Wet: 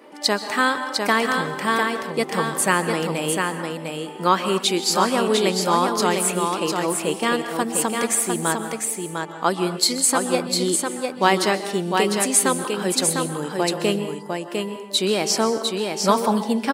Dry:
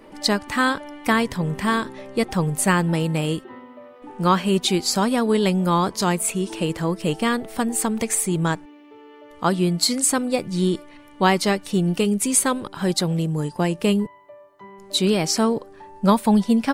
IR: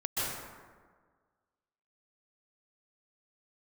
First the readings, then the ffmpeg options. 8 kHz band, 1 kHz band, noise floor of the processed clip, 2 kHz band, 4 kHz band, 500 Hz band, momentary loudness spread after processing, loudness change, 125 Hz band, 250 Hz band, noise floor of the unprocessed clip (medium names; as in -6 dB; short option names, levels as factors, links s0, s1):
+2.5 dB, +2.5 dB, -35 dBFS, +3.0 dB, +2.5 dB, +2.0 dB, 7 LU, 0.0 dB, -7.0 dB, -3.5 dB, -46 dBFS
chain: -filter_complex "[0:a]highpass=300,aecho=1:1:702:0.596,asplit=2[s0][s1];[1:a]atrim=start_sample=2205,afade=t=out:st=0.34:d=0.01,atrim=end_sample=15435[s2];[s1][s2]afir=irnorm=-1:irlink=0,volume=0.178[s3];[s0][s3]amix=inputs=2:normalize=0"